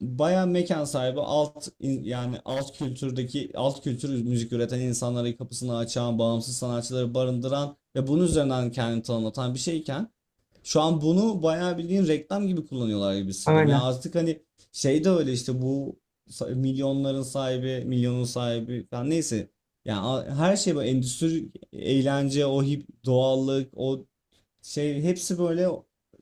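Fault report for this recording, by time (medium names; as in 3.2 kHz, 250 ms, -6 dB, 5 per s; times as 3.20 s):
2.12–2.87 s: clipped -24.5 dBFS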